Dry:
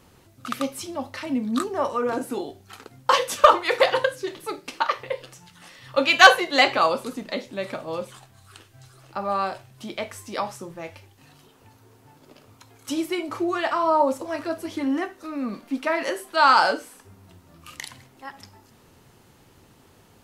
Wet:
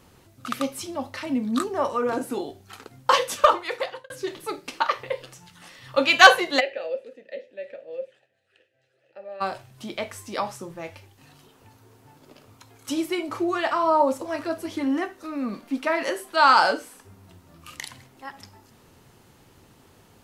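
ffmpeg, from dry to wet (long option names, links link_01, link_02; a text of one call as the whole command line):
ffmpeg -i in.wav -filter_complex "[0:a]asplit=3[link_01][link_02][link_03];[link_01]afade=type=out:start_time=6.59:duration=0.02[link_04];[link_02]asplit=3[link_05][link_06][link_07];[link_05]bandpass=frequency=530:width_type=q:width=8,volume=0dB[link_08];[link_06]bandpass=frequency=1840:width_type=q:width=8,volume=-6dB[link_09];[link_07]bandpass=frequency=2480:width_type=q:width=8,volume=-9dB[link_10];[link_08][link_09][link_10]amix=inputs=3:normalize=0,afade=type=in:start_time=6.59:duration=0.02,afade=type=out:start_time=9.4:duration=0.02[link_11];[link_03]afade=type=in:start_time=9.4:duration=0.02[link_12];[link_04][link_11][link_12]amix=inputs=3:normalize=0,asplit=2[link_13][link_14];[link_13]atrim=end=4.1,asetpts=PTS-STARTPTS,afade=type=out:start_time=3.18:duration=0.92[link_15];[link_14]atrim=start=4.1,asetpts=PTS-STARTPTS,afade=type=in:duration=0.004:curve=hsin[link_16];[link_15][link_16]concat=n=2:v=0:a=1" out.wav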